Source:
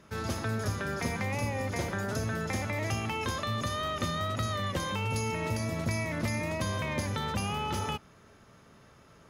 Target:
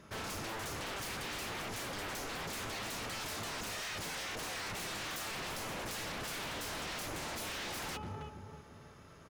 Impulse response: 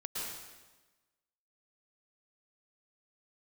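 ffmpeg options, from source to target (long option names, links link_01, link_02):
-filter_complex "[0:a]asplit=2[link_01][link_02];[link_02]adelay=322,lowpass=frequency=1100:poles=1,volume=-10dB,asplit=2[link_03][link_04];[link_04]adelay=322,lowpass=frequency=1100:poles=1,volume=0.44,asplit=2[link_05][link_06];[link_06]adelay=322,lowpass=frequency=1100:poles=1,volume=0.44,asplit=2[link_07][link_08];[link_08]adelay=322,lowpass=frequency=1100:poles=1,volume=0.44,asplit=2[link_09][link_10];[link_10]adelay=322,lowpass=frequency=1100:poles=1,volume=0.44[link_11];[link_01][link_03][link_05][link_07][link_09][link_11]amix=inputs=6:normalize=0,aeval=exprs='0.0158*(abs(mod(val(0)/0.0158+3,4)-2)-1)':channel_layout=same"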